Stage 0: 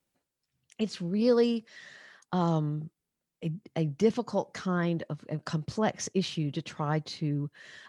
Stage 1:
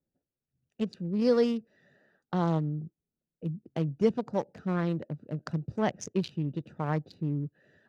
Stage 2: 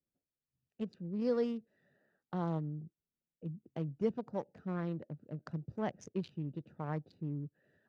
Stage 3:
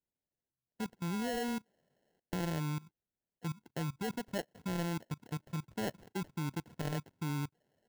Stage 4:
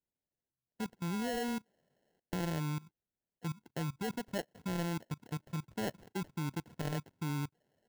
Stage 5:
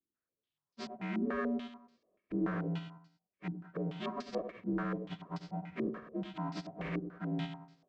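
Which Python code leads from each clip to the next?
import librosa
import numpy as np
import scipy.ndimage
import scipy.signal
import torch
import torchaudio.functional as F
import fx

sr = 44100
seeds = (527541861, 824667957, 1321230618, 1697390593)

y1 = fx.wiener(x, sr, points=41)
y2 = fx.high_shelf(y1, sr, hz=3300.0, db=-9.0)
y2 = y2 * 10.0 ** (-8.0 / 20.0)
y3 = fx.level_steps(y2, sr, step_db=21)
y3 = fx.sample_hold(y3, sr, seeds[0], rate_hz=1200.0, jitter_pct=0)
y3 = y3 * 10.0 ** (7.0 / 20.0)
y4 = y3
y5 = fx.partial_stretch(y4, sr, pct=78)
y5 = fx.echo_feedback(y5, sr, ms=96, feedback_pct=39, wet_db=-8)
y5 = fx.filter_held_lowpass(y5, sr, hz=6.9, low_hz=330.0, high_hz=4800.0)
y5 = y5 * 10.0 ** (-2.0 / 20.0)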